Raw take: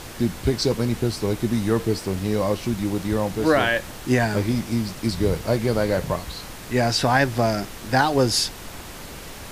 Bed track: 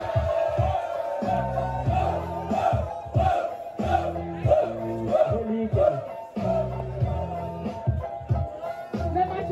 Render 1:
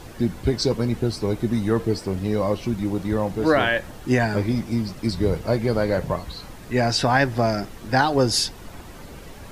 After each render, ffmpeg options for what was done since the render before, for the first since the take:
-af "afftdn=nr=9:nf=-38"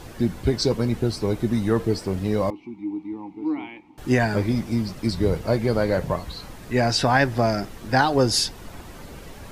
-filter_complex "[0:a]asettb=1/sr,asplit=3[s0][s1][s2];[s0]atrim=end=2.504[s3];[s1]atrim=start=2.5:end=3.98,asetpts=PTS-STARTPTS,afade=t=in:d=0.004:c=qsin,afade=t=out:st=1.476:d=0.004:c=qsin,asplit=3[s4][s5][s6];[s4]bandpass=f=300:t=q:w=8,volume=1[s7];[s5]bandpass=f=870:t=q:w=8,volume=0.501[s8];[s6]bandpass=f=2240:t=q:w=8,volume=0.355[s9];[s7][s8][s9]amix=inputs=3:normalize=0[s10];[s2]atrim=start=3.976[s11];[s3][s10]acrossfade=d=0.004:c1=hsin:c2=qsin[s12];[s12][s11]acrossfade=d=0.004:c1=qsin:c2=hsin"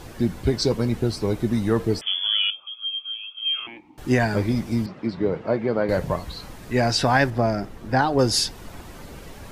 -filter_complex "[0:a]asettb=1/sr,asplit=3[s0][s1][s2];[s0]atrim=end=2.014[s3];[s1]atrim=start=2.01:end=3.67,asetpts=PTS-STARTPTS,afade=t=in:d=0.004:c=qsin,afade=t=out:st=1.656:d=0.004:c=qsin,lowpass=f=3000:t=q:w=0.5098,lowpass=f=3000:t=q:w=0.6013,lowpass=f=3000:t=q:w=0.9,lowpass=f=3000:t=q:w=2.563,afreqshift=-3500[s4];[s2]atrim=start=3.666[s5];[s3][s4]acrossfade=d=0.004:c1=hsin:c2=qsin[s6];[s6][s5]acrossfade=d=0.004:c1=qsin:c2=hsin,asettb=1/sr,asplit=3[s7][s8][s9];[s7]atrim=end=4.864[s10];[s8]atrim=start=4.86:end=5.89,asetpts=PTS-STARTPTS,afade=t=in:d=0.004:c=qsin,afade=t=out:st=1.026:d=0.004:c=qsin,highpass=180,lowpass=2300[s11];[s9]atrim=start=5.886[s12];[s10][s11]acrossfade=d=0.004:c1=hsin:c2=qsin[s13];[s13][s12]acrossfade=d=0.004:c1=qsin:c2=hsin,asettb=1/sr,asplit=3[s14][s15][s16];[s14]atrim=end=7.304[s17];[s15]atrim=start=7.3:end=8.19,asetpts=PTS-STARTPTS,afade=t=in:d=0.004:c=qsin,afade=t=out:st=0.886:d=0.004:c=qsin,highshelf=f=2200:g=-9[s18];[s16]atrim=start=8.186[s19];[s17][s18]acrossfade=d=0.004:c1=hsin:c2=qsin[s20];[s20][s19]acrossfade=d=0.004:c1=qsin:c2=hsin"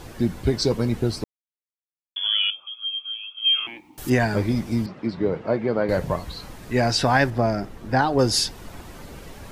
-filter_complex "[0:a]asettb=1/sr,asplit=3[s0][s1][s2];[s0]atrim=end=3.444[s3];[s1]atrim=start=3.44:end=4.1,asetpts=PTS-STARTPTS,afade=t=in:d=0.004:c=qsin,afade=t=out:st=0.656:d=0.004:c=qsin,aemphasis=mode=production:type=75kf[s4];[s2]atrim=start=4.096[s5];[s3][s4]acrossfade=d=0.004:c1=hsin:c2=qsin[s6];[s6][s5]acrossfade=d=0.004:c1=qsin:c2=hsin,asplit=3[s7][s8][s9];[s7]atrim=end=1.24,asetpts=PTS-STARTPTS,afade=t=out:st=1.236:d=0.004:c=hsin[s10];[s8]atrim=start=1.24:end=2.16,asetpts=PTS-STARTPTS,volume=0[s11];[s9]atrim=start=2.16,asetpts=PTS-STARTPTS,afade=t=in:d=0.004:c=hsin[s12];[s10][s11][s12]concat=n=3:v=0:a=1"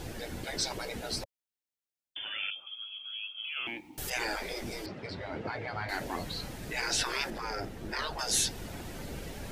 -af "equalizer=f=1100:t=o:w=0.49:g=-7.5,afftfilt=real='re*lt(hypot(re,im),0.141)':imag='im*lt(hypot(re,im),0.141)':win_size=1024:overlap=0.75"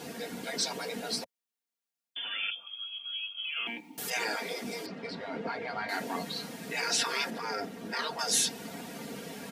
-af "highpass=f=140:w=0.5412,highpass=f=140:w=1.3066,aecho=1:1:4.3:0.65"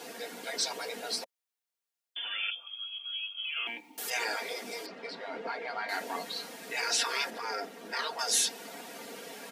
-af "highpass=390"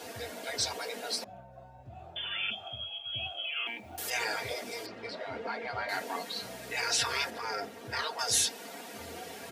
-filter_complex "[1:a]volume=0.0596[s0];[0:a][s0]amix=inputs=2:normalize=0"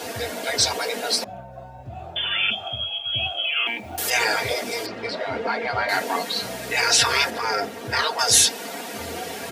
-af "volume=3.76"

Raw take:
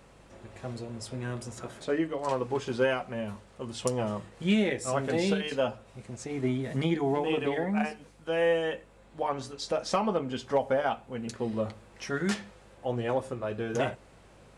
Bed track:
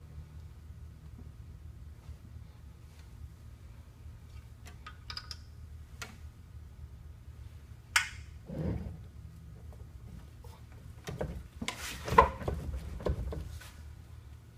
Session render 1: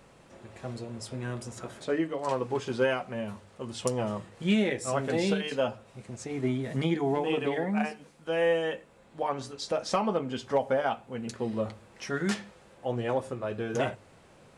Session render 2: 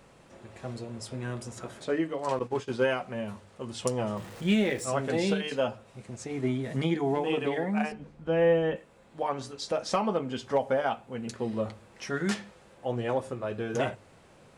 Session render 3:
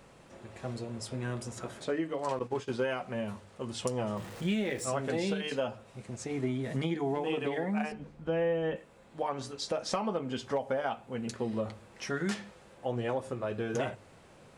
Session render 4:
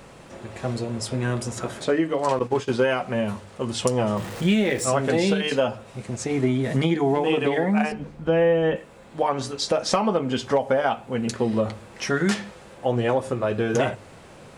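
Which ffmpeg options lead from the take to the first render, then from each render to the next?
-af "bandreject=f=50:t=h:w=4,bandreject=f=100:t=h:w=4"
-filter_complex "[0:a]asettb=1/sr,asplit=3[s0][s1][s2];[s0]atrim=end=2.394[s3];[s1]atrim=start=2.39:end=2.96,asetpts=PTS-STARTPTS,afade=t=in:d=0.004:c=qsin,afade=t=out:st=0.566:d=0.004:c=qsin,agate=range=0.0224:threshold=0.02:ratio=3:release=100:detection=peak[s4];[s2]atrim=start=2.956[s5];[s3][s4]acrossfade=d=0.004:c1=hsin:c2=qsin[s6];[s6][s5]acrossfade=d=0.004:c1=qsin:c2=hsin,asettb=1/sr,asplit=3[s7][s8][s9];[s7]atrim=end=4.174[s10];[s8]atrim=start=4.17:end=4.85,asetpts=PTS-STARTPTS,afade=t=in:d=0.004:c=qsin,afade=t=out:st=0.676:d=0.004:c=qsin,aeval=exprs='val(0)+0.5*0.00708*sgn(val(0))':c=same[s11];[s9]atrim=start=4.846[s12];[s10][s11]acrossfade=d=0.004:c1=hsin:c2=qsin[s13];[s13][s12]acrossfade=d=0.004:c1=qsin:c2=hsin,asettb=1/sr,asplit=3[s14][s15][s16];[s14]atrim=end=7.924[s17];[s15]atrim=start=7.92:end=8.76,asetpts=PTS-STARTPTS,afade=t=in:d=0.004:c=qsin,afade=t=out:st=0.836:d=0.004:c=qsin,aemphasis=mode=reproduction:type=riaa[s18];[s16]atrim=start=8.756[s19];[s17][s18]acrossfade=d=0.004:c1=hsin:c2=qsin[s20];[s20][s19]acrossfade=d=0.004:c1=qsin:c2=hsin"
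-af "acompressor=threshold=0.0355:ratio=3"
-af "volume=3.35"

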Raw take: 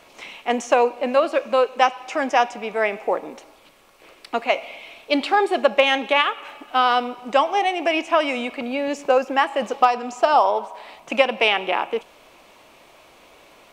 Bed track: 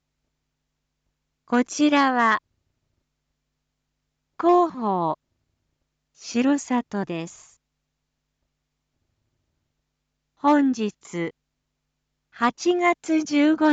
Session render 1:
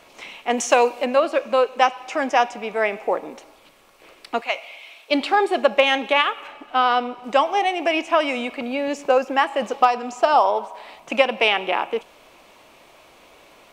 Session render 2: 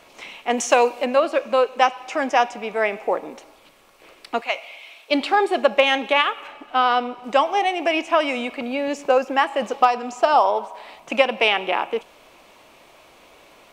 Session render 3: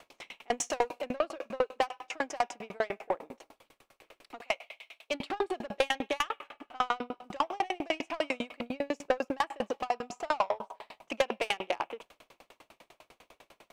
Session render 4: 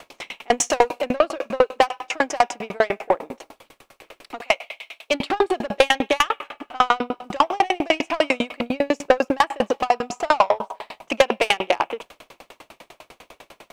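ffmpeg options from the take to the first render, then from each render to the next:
-filter_complex "[0:a]asplit=3[s0][s1][s2];[s0]afade=t=out:st=0.57:d=0.02[s3];[s1]highshelf=f=2600:g=10,afade=t=in:st=0.57:d=0.02,afade=t=out:st=1.04:d=0.02[s4];[s2]afade=t=in:st=1.04:d=0.02[s5];[s3][s4][s5]amix=inputs=3:normalize=0,asettb=1/sr,asplit=3[s6][s7][s8];[s6]atrim=end=4.414[s9];[s7]atrim=start=4.41:end=5.11,asetpts=PTS-STARTPTS,afade=t=in:d=0.004:c=qsin,afade=t=out:st=0.696:d=0.004:c=qsin,highpass=f=1300:p=1[s10];[s8]atrim=start=5.106[s11];[s9][s10]acrossfade=d=0.004:c1=hsin:c2=qsin[s12];[s12][s11]acrossfade=d=0.004:c1=qsin:c2=hsin,asettb=1/sr,asplit=3[s13][s14][s15];[s13]atrim=end=6.474[s16];[s14]atrim=start=6.47:end=7.24,asetpts=PTS-STARTPTS,afade=t=in:d=0.004:c=qsin,afade=t=out:st=0.766:d=0.004:c=qsin,lowpass=f=3800:p=1[s17];[s15]atrim=start=7.236[s18];[s16][s17]acrossfade=d=0.004:c1=hsin:c2=qsin[s19];[s19][s18]acrossfade=d=0.004:c1=qsin:c2=hsin"
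-af anull
-af "asoftclip=type=tanh:threshold=0.158,aeval=exprs='val(0)*pow(10,-37*if(lt(mod(10*n/s,1),2*abs(10)/1000),1-mod(10*n/s,1)/(2*abs(10)/1000),(mod(10*n/s,1)-2*abs(10)/1000)/(1-2*abs(10)/1000))/20)':c=same"
-af "volume=3.98"

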